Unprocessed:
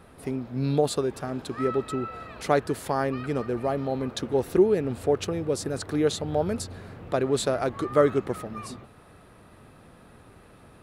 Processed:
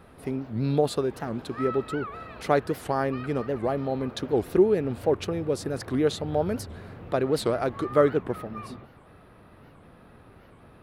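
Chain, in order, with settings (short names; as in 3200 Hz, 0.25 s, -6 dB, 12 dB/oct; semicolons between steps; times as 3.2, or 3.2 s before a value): bell 7500 Hz -6.5 dB 1.1 oct, from 8.09 s -14 dB; record warp 78 rpm, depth 250 cents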